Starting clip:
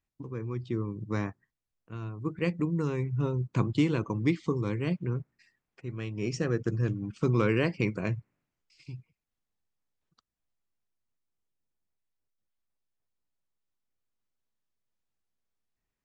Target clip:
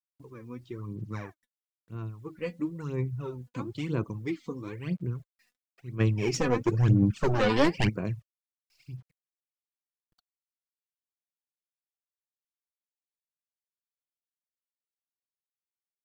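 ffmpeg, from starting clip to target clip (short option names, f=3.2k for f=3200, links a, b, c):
-filter_complex "[0:a]asplit=3[a][b][c];[a]afade=t=out:st=5.99:d=0.02[d];[b]aeval=exprs='0.224*sin(PI/2*2.82*val(0)/0.224)':c=same,afade=t=in:st=5.99:d=0.02,afade=t=out:st=7.88:d=0.02[e];[c]afade=t=in:st=7.88:d=0.02[f];[d][e][f]amix=inputs=3:normalize=0,acrusher=bits=10:mix=0:aa=0.000001,aphaser=in_gain=1:out_gain=1:delay=4.1:decay=0.66:speed=1:type=sinusoidal,volume=-8dB"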